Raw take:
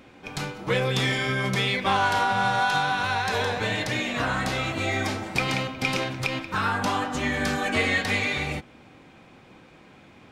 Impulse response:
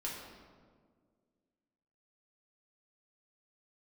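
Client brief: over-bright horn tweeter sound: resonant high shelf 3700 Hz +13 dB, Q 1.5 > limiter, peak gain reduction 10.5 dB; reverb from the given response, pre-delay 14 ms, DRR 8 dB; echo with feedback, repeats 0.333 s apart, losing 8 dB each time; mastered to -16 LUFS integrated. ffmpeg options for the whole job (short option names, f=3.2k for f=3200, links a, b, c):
-filter_complex "[0:a]aecho=1:1:333|666|999|1332|1665:0.398|0.159|0.0637|0.0255|0.0102,asplit=2[a][b];[1:a]atrim=start_sample=2205,adelay=14[c];[b][c]afir=irnorm=-1:irlink=0,volume=-9.5dB[d];[a][d]amix=inputs=2:normalize=0,highshelf=f=3.7k:t=q:w=1.5:g=13,volume=9dB,alimiter=limit=-6.5dB:level=0:latency=1"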